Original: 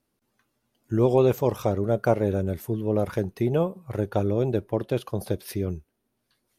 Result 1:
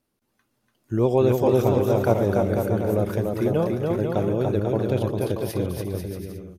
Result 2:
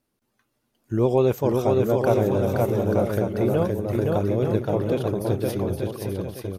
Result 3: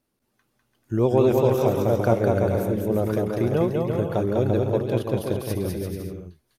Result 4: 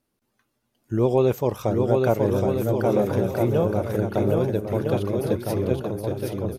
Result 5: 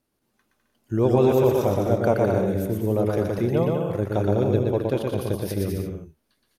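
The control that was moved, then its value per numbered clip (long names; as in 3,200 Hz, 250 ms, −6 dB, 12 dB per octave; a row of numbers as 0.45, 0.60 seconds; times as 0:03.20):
bouncing-ball delay, first gap: 290, 520, 200, 770, 120 milliseconds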